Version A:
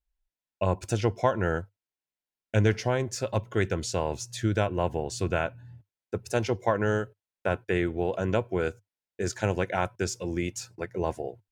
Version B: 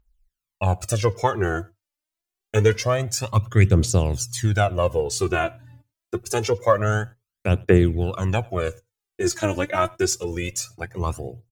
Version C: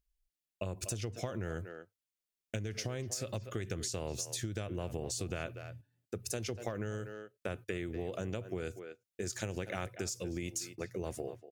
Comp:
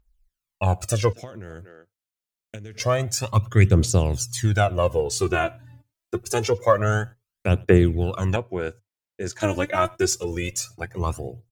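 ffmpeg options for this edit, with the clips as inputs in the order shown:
-filter_complex "[1:a]asplit=3[s0][s1][s2];[s0]atrim=end=1.132[s3];[2:a]atrim=start=1.128:end=2.802[s4];[s1]atrim=start=2.798:end=8.362[s5];[0:a]atrim=start=8.358:end=9.402[s6];[s2]atrim=start=9.398[s7];[s3][s4]acrossfade=d=0.004:c1=hsin:c2=hsin[s8];[s8][s5]acrossfade=d=0.004:c1=hsin:c2=hsin[s9];[s9][s6]acrossfade=d=0.004:c1=hsin:c2=hsin[s10];[s10][s7]acrossfade=d=0.004:c1=hsin:c2=hsin"

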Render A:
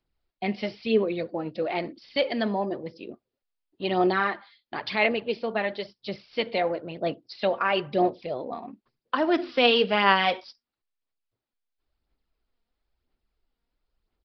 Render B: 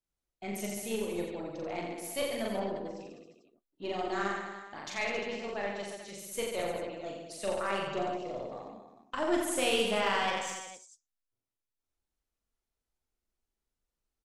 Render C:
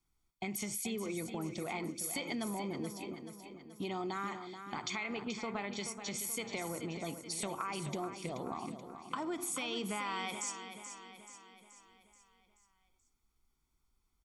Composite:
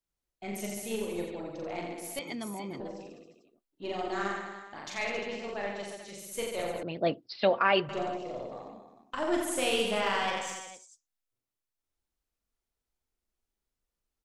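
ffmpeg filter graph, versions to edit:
-filter_complex "[1:a]asplit=3[s0][s1][s2];[s0]atrim=end=2.192[s3];[2:a]atrim=start=2.188:end=2.802[s4];[s1]atrim=start=2.798:end=6.832[s5];[0:a]atrim=start=6.828:end=7.892[s6];[s2]atrim=start=7.888[s7];[s3][s4]acrossfade=d=0.004:c1=hsin:c2=hsin[s8];[s8][s5]acrossfade=d=0.004:c1=hsin:c2=hsin[s9];[s9][s6]acrossfade=d=0.004:c1=hsin:c2=hsin[s10];[s10][s7]acrossfade=d=0.004:c1=hsin:c2=hsin"

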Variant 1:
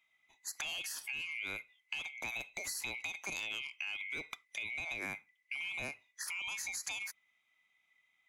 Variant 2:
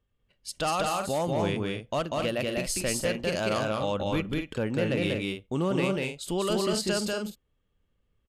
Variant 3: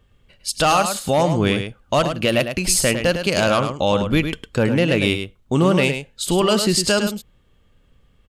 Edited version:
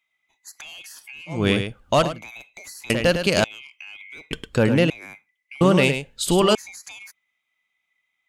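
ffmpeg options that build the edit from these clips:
-filter_complex "[2:a]asplit=4[s0][s1][s2][s3];[0:a]asplit=5[s4][s5][s6][s7][s8];[s4]atrim=end=1.5[s9];[s0]atrim=start=1.26:end=2.24[s10];[s5]atrim=start=2:end=2.902[s11];[s1]atrim=start=2.898:end=3.442[s12];[s6]atrim=start=3.438:end=4.312[s13];[s2]atrim=start=4.308:end=4.902[s14];[s7]atrim=start=4.898:end=5.612[s15];[s3]atrim=start=5.608:end=6.552[s16];[s8]atrim=start=6.548[s17];[s9][s10]acrossfade=d=0.24:c1=tri:c2=tri[s18];[s18][s11]acrossfade=d=0.24:c1=tri:c2=tri[s19];[s19][s12]acrossfade=d=0.004:c1=hsin:c2=hsin[s20];[s20][s13]acrossfade=d=0.004:c1=hsin:c2=hsin[s21];[s21][s14]acrossfade=d=0.004:c1=hsin:c2=hsin[s22];[s22][s15]acrossfade=d=0.004:c1=hsin:c2=hsin[s23];[s23][s16]acrossfade=d=0.004:c1=hsin:c2=hsin[s24];[s24][s17]acrossfade=d=0.004:c1=hsin:c2=hsin"

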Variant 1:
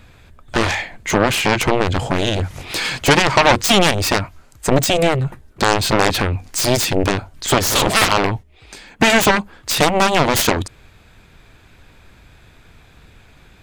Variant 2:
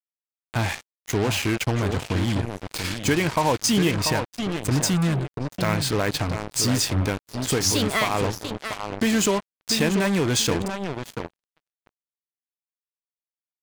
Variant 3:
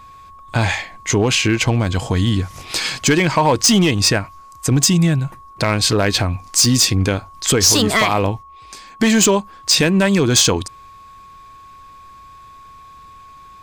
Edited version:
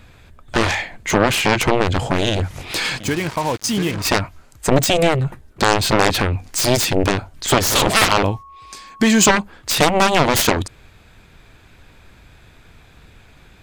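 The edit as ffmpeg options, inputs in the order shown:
-filter_complex "[0:a]asplit=3[s0][s1][s2];[s0]atrim=end=3.002[s3];[1:a]atrim=start=2.998:end=4.052[s4];[s1]atrim=start=4.048:end=8.232[s5];[2:a]atrim=start=8.228:end=9.272[s6];[s2]atrim=start=9.268[s7];[s3][s4]acrossfade=d=0.004:c1=hsin:c2=hsin[s8];[s8][s5]acrossfade=d=0.004:c1=hsin:c2=hsin[s9];[s9][s6]acrossfade=d=0.004:c1=hsin:c2=hsin[s10];[s10][s7]acrossfade=d=0.004:c1=hsin:c2=hsin"

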